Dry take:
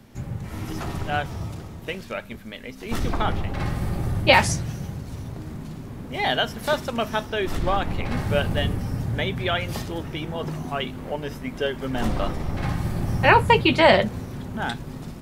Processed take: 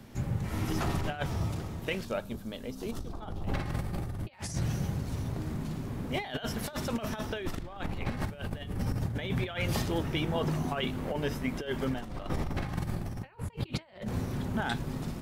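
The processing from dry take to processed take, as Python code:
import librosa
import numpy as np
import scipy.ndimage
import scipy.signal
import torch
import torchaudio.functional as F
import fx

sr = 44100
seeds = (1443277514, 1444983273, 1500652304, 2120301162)

y = fx.peak_eq(x, sr, hz=2100.0, db=-13.5, octaves=0.95, at=(2.05, 3.49))
y = fx.over_compress(y, sr, threshold_db=-28.0, ratio=-0.5)
y = y * 10.0 ** (-4.5 / 20.0)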